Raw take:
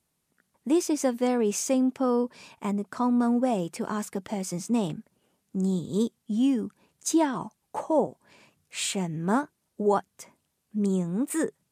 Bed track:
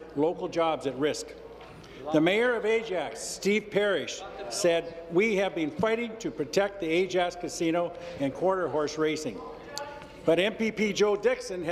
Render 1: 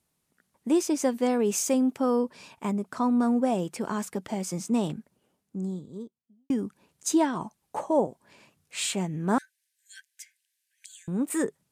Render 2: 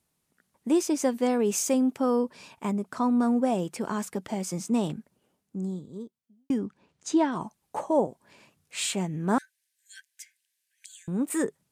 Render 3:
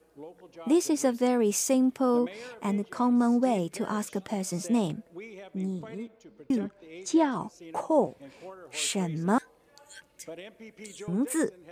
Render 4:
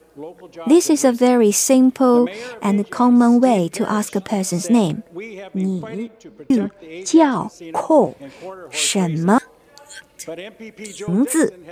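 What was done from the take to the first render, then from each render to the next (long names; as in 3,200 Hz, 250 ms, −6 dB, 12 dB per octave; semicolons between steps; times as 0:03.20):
0:01.33–0:02.19: high-shelf EQ 11,000 Hz +8 dB; 0:04.85–0:06.50: fade out and dull; 0:09.38–0:11.08: linear-phase brick-wall high-pass 1,500 Hz
0:06.58–0:07.32: high-frequency loss of the air 95 metres
mix in bed track −19 dB
level +11 dB; brickwall limiter −3 dBFS, peak gain reduction 2 dB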